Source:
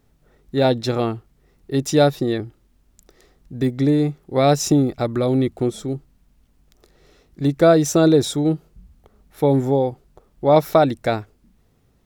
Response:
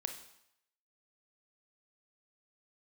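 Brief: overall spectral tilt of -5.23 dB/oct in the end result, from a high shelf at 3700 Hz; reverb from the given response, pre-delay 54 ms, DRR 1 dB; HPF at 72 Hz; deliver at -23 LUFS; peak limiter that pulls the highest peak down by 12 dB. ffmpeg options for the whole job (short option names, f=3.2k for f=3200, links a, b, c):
-filter_complex "[0:a]highpass=72,highshelf=f=3.7k:g=6.5,alimiter=limit=-12.5dB:level=0:latency=1,asplit=2[a][b];[1:a]atrim=start_sample=2205,adelay=54[c];[b][c]afir=irnorm=-1:irlink=0,volume=-0.5dB[d];[a][d]amix=inputs=2:normalize=0,volume=-2.5dB"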